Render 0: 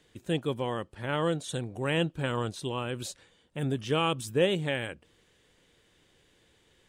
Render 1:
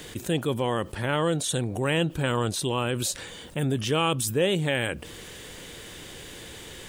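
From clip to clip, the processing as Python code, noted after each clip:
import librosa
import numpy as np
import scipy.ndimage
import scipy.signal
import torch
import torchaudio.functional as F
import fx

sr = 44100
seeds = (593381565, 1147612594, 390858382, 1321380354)

y = fx.high_shelf(x, sr, hz=9500.0, db=11.5)
y = fx.env_flatten(y, sr, amount_pct=50)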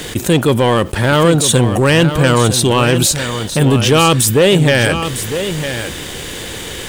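y = fx.leveller(x, sr, passes=2)
y = y + 10.0 ** (-9.5 / 20.0) * np.pad(y, (int(955 * sr / 1000.0), 0))[:len(y)]
y = F.gain(torch.from_numpy(y), 8.5).numpy()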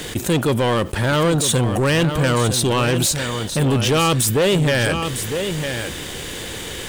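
y = 10.0 ** (-8.5 / 20.0) * np.tanh(x / 10.0 ** (-8.5 / 20.0))
y = F.gain(torch.from_numpy(y), -3.5).numpy()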